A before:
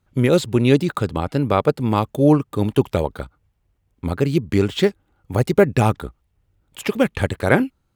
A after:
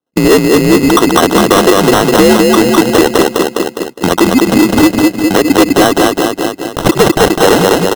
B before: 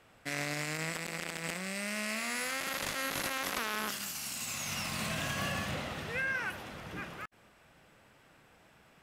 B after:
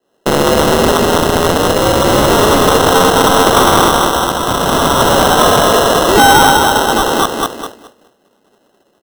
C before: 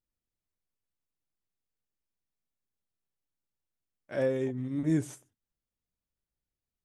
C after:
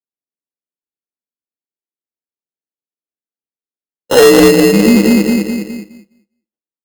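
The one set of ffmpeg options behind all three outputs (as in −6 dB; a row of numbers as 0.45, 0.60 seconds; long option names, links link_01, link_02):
-af "acrusher=bits=6:mode=log:mix=0:aa=0.000001,acompressor=threshold=-26dB:ratio=16,highpass=frequency=360:width_type=q:width=0.5412,highpass=frequency=360:width_type=q:width=1.307,lowpass=frequency=3100:width_type=q:width=0.5176,lowpass=frequency=3100:width_type=q:width=0.7071,lowpass=frequency=3100:width_type=q:width=1.932,afreqshift=-83,aecho=1:1:205|410|615|820|1025|1230|1435:0.631|0.341|0.184|0.0994|0.0537|0.029|0.0156,adynamicsmooth=sensitivity=5.5:basefreq=630,acrusher=samples=19:mix=1:aa=0.000001,bandreject=frequency=1800:width=6.5,asoftclip=type=hard:threshold=-31dB,agate=range=-33dB:threshold=-55dB:ratio=3:detection=peak,alimiter=level_in=35dB:limit=-1dB:release=50:level=0:latency=1,volume=-1dB"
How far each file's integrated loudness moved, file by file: +10.5, +25.5, +22.5 LU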